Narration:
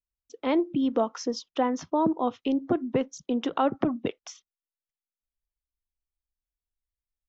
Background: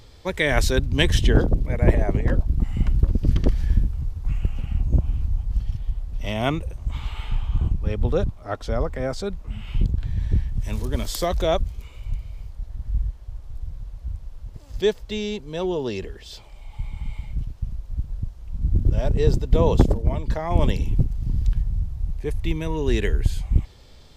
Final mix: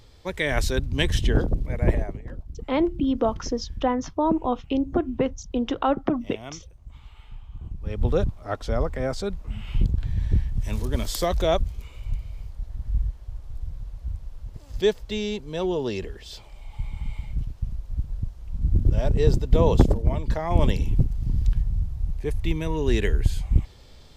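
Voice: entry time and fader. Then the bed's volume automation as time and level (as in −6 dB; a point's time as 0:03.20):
2.25 s, +2.0 dB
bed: 0:01.98 −4 dB
0:02.20 −16.5 dB
0:07.60 −16.5 dB
0:08.05 −0.5 dB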